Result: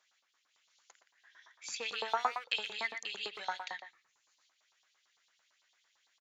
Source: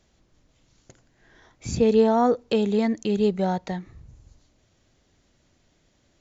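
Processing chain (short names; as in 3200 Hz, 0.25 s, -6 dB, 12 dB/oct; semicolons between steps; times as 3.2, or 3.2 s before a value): speakerphone echo 0.12 s, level -7 dB; dynamic EQ 2600 Hz, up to +4 dB, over -40 dBFS, Q 0.77; LFO high-pass saw up 8.9 Hz 930–4200 Hz; gain -7 dB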